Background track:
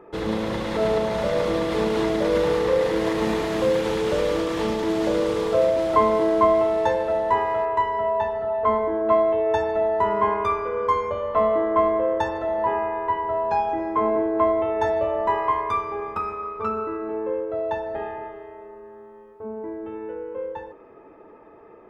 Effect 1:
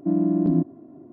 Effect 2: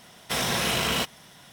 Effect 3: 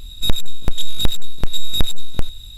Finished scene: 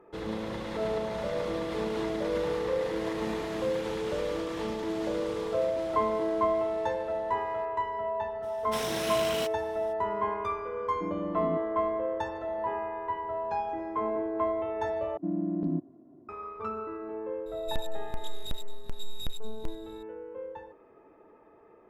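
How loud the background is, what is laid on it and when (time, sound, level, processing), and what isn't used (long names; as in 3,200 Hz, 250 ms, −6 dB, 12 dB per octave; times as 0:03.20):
background track −9 dB
0:08.42: mix in 2 −9 dB, fades 0.02 s
0:10.95: mix in 1 −14 dB
0:15.17: overwrite with 1 −9.5 dB
0:17.46: mix in 3 −18 dB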